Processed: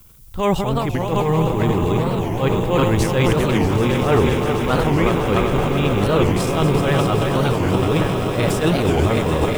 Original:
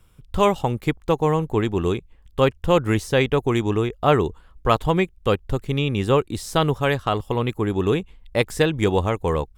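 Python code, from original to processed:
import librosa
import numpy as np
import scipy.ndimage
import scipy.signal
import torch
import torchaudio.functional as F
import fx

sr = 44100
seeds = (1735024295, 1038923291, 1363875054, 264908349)

y = fx.reverse_delay_fb(x, sr, ms=187, feedback_pct=82, wet_db=-8.5)
y = fx.low_shelf(y, sr, hz=230.0, db=3.5)
y = fx.transient(y, sr, attack_db=-11, sustain_db=9)
y = fx.dmg_noise_colour(y, sr, seeds[0], colour='violet', level_db=-51.0)
y = fx.echo_swell(y, sr, ms=130, loudest=8, wet_db=-14.5)
y = fx.record_warp(y, sr, rpm=45.0, depth_cents=250.0)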